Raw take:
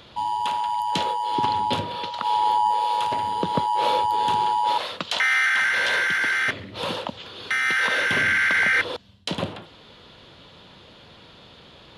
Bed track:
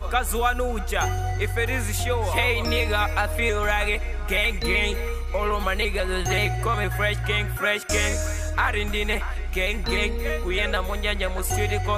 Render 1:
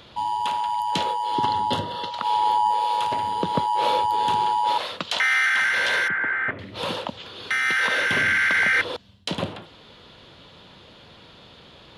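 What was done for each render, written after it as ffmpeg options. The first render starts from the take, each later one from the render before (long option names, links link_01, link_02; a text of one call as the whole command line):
ffmpeg -i in.wav -filter_complex "[0:a]asettb=1/sr,asplit=3[link_01][link_02][link_03];[link_01]atrim=end=1.344[link_04];[link_02]atrim=start=1.34:end=2.11,asetpts=PTS-STARTPTS,afade=type=in:duration=0.004:curve=qsin,afade=type=out:start_time=0.766:duration=0.004:curve=qsin,asuperstop=centerf=2400:order=12:qfactor=5.3[link_05];[link_03]atrim=start=2.106[link_06];[link_04][link_05]acrossfade=duration=0.004:curve1=hsin:curve2=qsin[link_07];[link_07][link_06]acrossfade=duration=0.004:curve1=qsin:curve2=hsin,asettb=1/sr,asplit=3[link_08][link_09][link_10];[link_08]atrim=end=6.084[link_11];[link_09]atrim=start=6.08:end=6.59,asetpts=PTS-STARTPTS,afade=type=in:duration=0.004:curve=qsin,afade=type=out:start_time=0.506:duration=0.004:curve=qsin,lowpass=frequency=1900:width=0.5412,lowpass=frequency=1900:width=1.3066[link_12];[link_10]atrim=start=6.586[link_13];[link_11][link_12]acrossfade=duration=0.004:curve1=hsin:curve2=qsin[link_14];[link_14][link_13]acrossfade=duration=0.004:curve1=qsin:curve2=hsin" out.wav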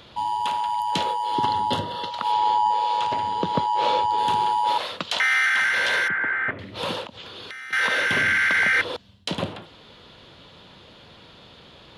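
ffmpeg -i in.wav -filter_complex "[0:a]asettb=1/sr,asplit=3[link_01][link_02][link_03];[link_01]atrim=end=2.324[link_04];[link_02]atrim=start=2.32:end=4.18,asetpts=PTS-STARTPTS,afade=type=in:duration=0.004:curve=qsin,afade=type=out:start_time=1.856:duration=0.004:curve=qsin,lowpass=frequency=7600:width=0.5412,lowpass=frequency=7600:width=1.3066[link_05];[link_03]atrim=start=4.176[link_06];[link_04][link_05]acrossfade=duration=0.004:curve1=hsin:curve2=qsin[link_07];[link_07][link_06]acrossfade=duration=0.004:curve1=qsin:curve2=hsin,asettb=1/sr,asplit=3[link_08][link_09][link_10];[link_08]atrim=end=7.054[link_11];[link_09]atrim=start=7.05:end=7.73,asetpts=PTS-STARTPTS,afade=type=in:duration=0.004:curve=qsin,afade=type=out:start_time=0.676:duration=0.004:curve=qsin,acompressor=threshold=-34dB:ratio=16:attack=3.2:release=140:knee=1:detection=peak[link_12];[link_10]atrim=start=7.726[link_13];[link_11][link_12]acrossfade=duration=0.004:curve1=hsin:curve2=qsin[link_14];[link_14][link_13]acrossfade=duration=0.004:curve1=qsin:curve2=hsin" out.wav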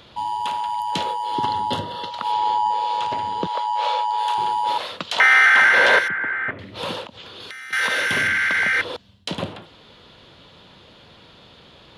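ffmpeg -i in.wav -filter_complex "[0:a]asettb=1/sr,asplit=3[link_01][link_02][link_03];[link_01]atrim=end=3.474[link_04];[link_02]atrim=start=3.47:end=4.38,asetpts=PTS-STARTPTS,afade=type=in:duration=0.004:curve=qsin,afade=type=out:start_time=0.906:duration=0.004:curve=qsin,highpass=frequency=570:width=0.5412,highpass=frequency=570:width=1.3066[link_05];[link_03]atrim=start=4.376[link_06];[link_04][link_05]acrossfade=duration=0.004:curve1=hsin:curve2=qsin[link_07];[link_07][link_06]acrossfade=duration=0.004:curve1=qsin:curve2=hsin,asettb=1/sr,asplit=3[link_08][link_09][link_10];[link_08]atrim=end=5.184[link_11];[link_09]atrim=start=5.18:end=5.99,asetpts=PTS-STARTPTS,afade=type=in:duration=0.004:curve=qsin,afade=type=out:start_time=0.806:duration=0.004:curve=qsin,equalizer=frequency=560:width=0.31:gain=13[link_12];[link_10]atrim=start=5.986[link_13];[link_11][link_12]acrossfade=duration=0.004:curve1=hsin:curve2=qsin[link_14];[link_14][link_13]acrossfade=duration=0.004:curve1=qsin:curve2=hsin,asettb=1/sr,asplit=3[link_15][link_16][link_17];[link_15]atrim=end=7.404[link_18];[link_16]atrim=start=7.4:end=8.28,asetpts=PTS-STARTPTS,afade=type=in:duration=0.004:curve=qsin,afade=type=out:start_time=0.876:duration=0.004:curve=qsin,highshelf=frequency=5900:gain=8[link_19];[link_17]atrim=start=8.276[link_20];[link_18][link_19]acrossfade=duration=0.004:curve1=hsin:curve2=qsin[link_21];[link_21][link_20]acrossfade=duration=0.004:curve1=qsin:curve2=hsin" out.wav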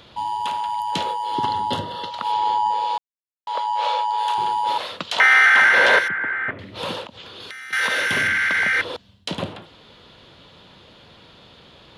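ffmpeg -i in.wav -filter_complex "[0:a]asplit=3[link_01][link_02][link_03];[link_01]atrim=end=2.98,asetpts=PTS-STARTPTS,afade=type=out:start_time=2.976:duration=0.004:curve=hsin[link_04];[link_02]atrim=start=2.98:end=3.47,asetpts=PTS-STARTPTS,volume=0[link_05];[link_03]atrim=start=3.47,asetpts=PTS-STARTPTS,afade=type=in:duration=0.004:curve=hsin[link_06];[link_04][link_05][link_06]concat=n=3:v=0:a=1" out.wav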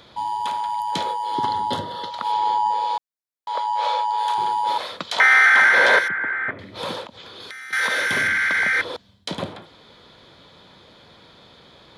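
ffmpeg -i in.wav -af "lowshelf=frequency=140:gain=-5,bandreject=frequency=2800:width=5.5" out.wav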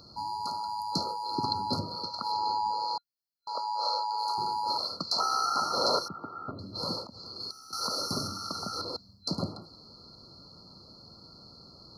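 ffmpeg -i in.wav -af "afftfilt=real='re*(1-between(b*sr/4096,1400,4100))':imag='im*(1-between(b*sr/4096,1400,4100))':win_size=4096:overlap=0.75,equalizer=frequency=500:width_type=o:width=1:gain=-7,equalizer=frequency=1000:width_type=o:width=1:gain=-9,equalizer=frequency=4000:width_type=o:width=1:gain=12,equalizer=frequency=8000:width_type=o:width=1:gain=-11" out.wav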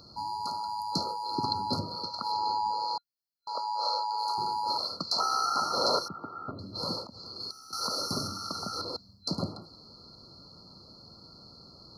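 ffmpeg -i in.wav -af anull out.wav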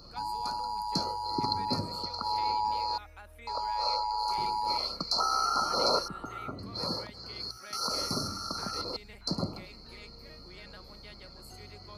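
ffmpeg -i in.wav -i bed.wav -filter_complex "[1:a]volume=-26.5dB[link_01];[0:a][link_01]amix=inputs=2:normalize=0" out.wav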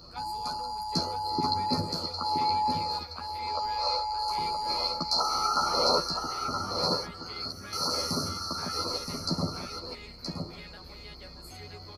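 ffmpeg -i in.wav -filter_complex "[0:a]asplit=2[link_01][link_02];[link_02]adelay=12,volume=-2dB[link_03];[link_01][link_03]amix=inputs=2:normalize=0,asplit=2[link_04][link_05];[link_05]aecho=0:1:972:0.501[link_06];[link_04][link_06]amix=inputs=2:normalize=0" out.wav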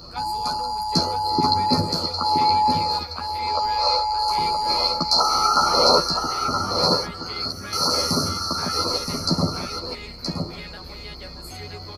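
ffmpeg -i in.wav -af "volume=8.5dB" out.wav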